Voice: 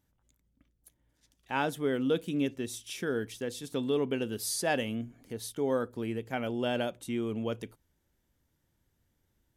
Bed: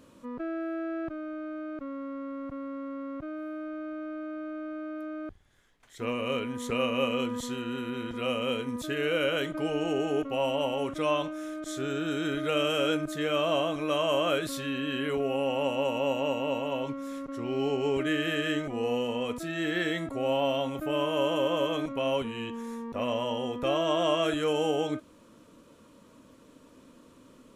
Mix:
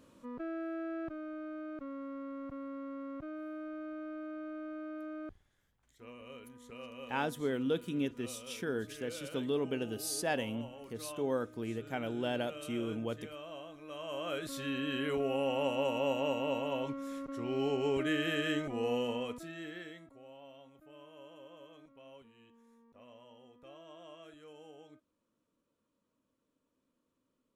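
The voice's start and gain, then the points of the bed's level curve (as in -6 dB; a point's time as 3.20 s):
5.60 s, -4.0 dB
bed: 5.39 s -5.5 dB
5.87 s -19.5 dB
13.81 s -19.5 dB
14.68 s -4 dB
19.10 s -4 dB
20.31 s -26.5 dB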